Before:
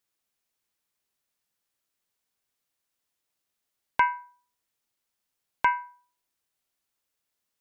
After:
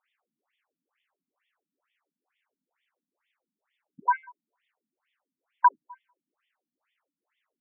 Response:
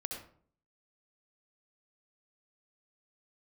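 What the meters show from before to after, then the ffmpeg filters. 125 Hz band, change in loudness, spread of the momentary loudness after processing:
n/a, +1.0 dB, 7 LU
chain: -filter_complex "[0:a]acontrast=84,asplit=2[a][b];[1:a]atrim=start_sample=2205,afade=t=out:st=0.16:d=0.01,atrim=end_sample=7497,lowpass=1.3k[c];[b][c]afir=irnorm=-1:irlink=0,volume=-19.5dB[d];[a][d]amix=inputs=2:normalize=0,asubboost=boost=5:cutoff=68,alimiter=level_in=13dB:limit=-1dB:release=50:level=0:latency=1,afftfilt=real='re*between(b*sr/1024,200*pow(2600/200,0.5+0.5*sin(2*PI*2.2*pts/sr))/1.41,200*pow(2600/200,0.5+0.5*sin(2*PI*2.2*pts/sr))*1.41)':imag='im*between(b*sr/1024,200*pow(2600/200,0.5+0.5*sin(2*PI*2.2*pts/sr))/1.41,200*pow(2600/200,0.5+0.5*sin(2*PI*2.2*pts/sr))*1.41)':win_size=1024:overlap=0.75,volume=-6dB"

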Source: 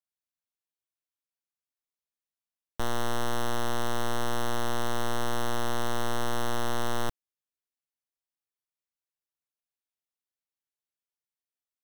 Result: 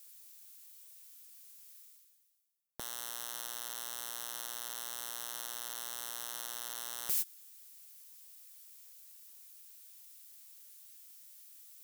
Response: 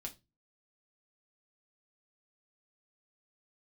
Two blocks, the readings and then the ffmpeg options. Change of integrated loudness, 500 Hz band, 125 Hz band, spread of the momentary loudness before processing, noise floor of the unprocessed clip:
-6.0 dB, -23.0 dB, under -30 dB, 2 LU, under -85 dBFS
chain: -af "areverse,acompressor=mode=upward:threshold=-31dB:ratio=2.5,areverse,asoftclip=type=tanh:threshold=-20.5dB,agate=range=-25dB:threshold=-44dB:ratio=16:detection=peak,aderivative,aeval=exprs='0.106*sin(PI/2*8.91*val(0)/0.106)':c=same,volume=2dB"

